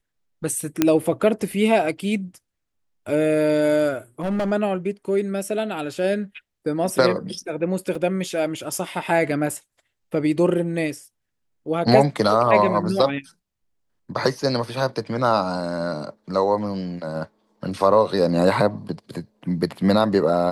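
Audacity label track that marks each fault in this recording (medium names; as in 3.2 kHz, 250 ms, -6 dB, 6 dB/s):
0.820000	0.820000	pop -3 dBFS
4.220000	4.520000	clipped -19.5 dBFS
7.950000	7.950000	dropout 3.2 ms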